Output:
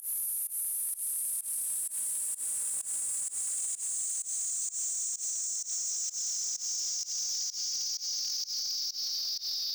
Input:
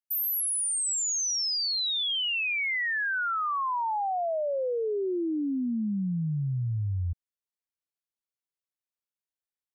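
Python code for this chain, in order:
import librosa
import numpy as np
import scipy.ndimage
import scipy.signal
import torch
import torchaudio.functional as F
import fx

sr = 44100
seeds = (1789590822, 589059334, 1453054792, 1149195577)

p1 = fx.peak_eq(x, sr, hz=4100.0, db=-15.0, octaves=0.25)
p2 = fx.over_compress(p1, sr, threshold_db=-33.0, ratio=-1.0)
p3 = p1 + F.gain(torch.from_numpy(p2), -1.0).numpy()
p4 = fx.paulstretch(p3, sr, seeds[0], factor=7.9, window_s=1.0, from_s=0.39)
p5 = fx.chorus_voices(p4, sr, voices=4, hz=0.24, base_ms=22, depth_ms=2.8, mix_pct=60)
p6 = 10.0 ** (-30.0 / 20.0) * np.tanh(p5 / 10.0 ** (-30.0 / 20.0))
p7 = fx.dmg_crackle(p6, sr, seeds[1], per_s=400.0, level_db=-45.0)
y = fx.volume_shaper(p7, sr, bpm=128, per_beat=1, depth_db=-23, release_ms=120.0, shape='fast start')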